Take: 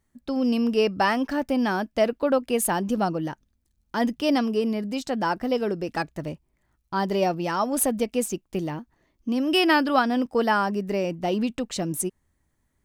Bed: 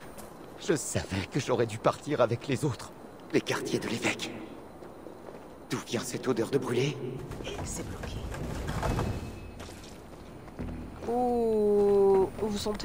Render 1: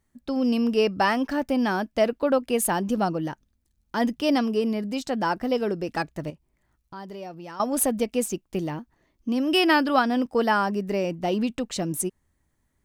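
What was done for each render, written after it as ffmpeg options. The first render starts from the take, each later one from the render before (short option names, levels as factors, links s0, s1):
-filter_complex "[0:a]asettb=1/sr,asplit=3[s0][s1][s2];[s0]atrim=end=6.304[s3];[s1]atrim=start=6.3:end=7.6,asetpts=PTS-STARTPTS,afade=t=in:d=0.004:c=qsin,afade=t=out:st=1.296:d=0.004:c=qsin,acompressor=threshold=0.00501:ratio=2:attack=3.2:release=140:knee=1:detection=peak[s4];[s2]atrim=start=7.596[s5];[s3][s4]acrossfade=d=0.004:c1=hsin:c2=qsin[s6];[s6][s5]acrossfade=d=0.004:c1=qsin:c2=hsin"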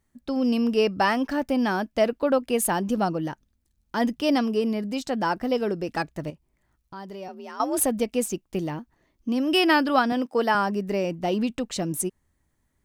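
-filter_complex "[0:a]asettb=1/sr,asplit=3[s0][s1][s2];[s0]atrim=end=7.284[s3];[s1]atrim=start=7.28:end=7.81,asetpts=PTS-STARTPTS,afade=t=in:d=0.004:c=qsin,afade=t=out:st=0.526:d=0.004:c=qsin,afreqshift=53[s4];[s2]atrim=start=7.806[s5];[s3][s4]acrossfade=d=0.004:c1=hsin:c2=qsin[s6];[s6][s5]acrossfade=d=0.004:c1=qsin:c2=hsin,asettb=1/sr,asplit=3[s7][s8][s9];[s7]atrim=end=10.124[s10];[s8]atrim=start=10.12:end=10.55,asetpts=PTS-STARTPTS,afade=t=in:d=0.004:c=qsin,afade=t=out:st=0.426:d=0.004:c=qsin,highpass=230[s11];[s9]atrim=start=10.546[s12];[s10][s11]acrossfade=d=0.004:c1=hsin:c2=qsin[s13];[s13][s12]acrossfade=d=0.004:c1=qsin:c2=hsin"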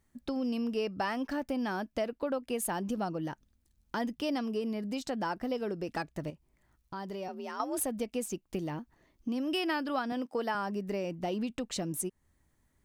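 -af "acompressor=threshold=0.0178:ratio=2.5"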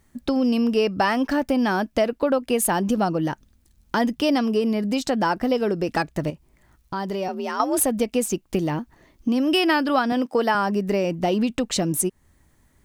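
-af "volume=3.98"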